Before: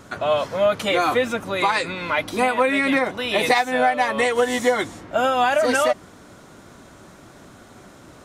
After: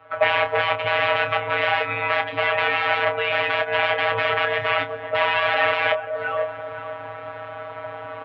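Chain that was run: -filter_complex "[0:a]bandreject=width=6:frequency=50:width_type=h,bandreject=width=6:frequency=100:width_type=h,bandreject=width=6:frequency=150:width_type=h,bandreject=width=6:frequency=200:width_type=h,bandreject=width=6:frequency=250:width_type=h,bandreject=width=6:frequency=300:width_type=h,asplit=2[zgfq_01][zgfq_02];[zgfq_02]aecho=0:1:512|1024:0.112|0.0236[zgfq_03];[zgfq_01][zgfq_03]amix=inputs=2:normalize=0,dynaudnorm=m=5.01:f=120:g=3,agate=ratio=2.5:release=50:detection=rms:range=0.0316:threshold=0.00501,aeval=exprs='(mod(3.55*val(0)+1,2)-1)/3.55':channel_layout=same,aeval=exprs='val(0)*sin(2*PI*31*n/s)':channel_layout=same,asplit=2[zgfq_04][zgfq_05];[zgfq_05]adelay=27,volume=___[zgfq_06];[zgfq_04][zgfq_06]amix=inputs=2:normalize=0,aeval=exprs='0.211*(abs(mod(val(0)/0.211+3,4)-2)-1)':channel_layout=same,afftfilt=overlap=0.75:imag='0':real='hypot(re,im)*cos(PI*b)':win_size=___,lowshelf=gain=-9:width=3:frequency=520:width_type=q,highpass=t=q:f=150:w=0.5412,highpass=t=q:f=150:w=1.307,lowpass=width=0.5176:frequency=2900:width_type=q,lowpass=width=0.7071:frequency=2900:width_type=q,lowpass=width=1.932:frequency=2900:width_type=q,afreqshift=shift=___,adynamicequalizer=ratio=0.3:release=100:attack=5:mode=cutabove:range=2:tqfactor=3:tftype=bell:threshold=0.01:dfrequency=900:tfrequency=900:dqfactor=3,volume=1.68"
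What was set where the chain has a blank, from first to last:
0.316, 1024, -63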